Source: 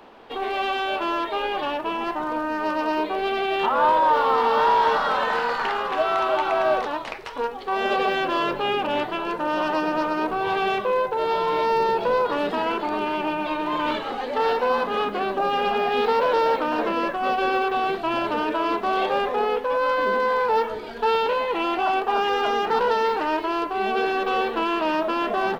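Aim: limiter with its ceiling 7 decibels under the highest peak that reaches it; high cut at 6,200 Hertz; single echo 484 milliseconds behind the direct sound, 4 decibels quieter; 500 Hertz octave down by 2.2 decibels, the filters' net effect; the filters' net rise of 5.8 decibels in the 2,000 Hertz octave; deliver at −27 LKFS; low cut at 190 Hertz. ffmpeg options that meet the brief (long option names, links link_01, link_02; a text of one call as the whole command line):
ffmpeg -i in.wav -af "highpass=190,lowpass=6200,equalizer=frequency=500:width_type=o:gain=-3,equalizer=frequency=2000:width_type=o:gain=8.5,alimiter=limit=-15.5dB:level=0:latency=1,aecho=1:1:484:0.631,volume=-4.5dB" out.wav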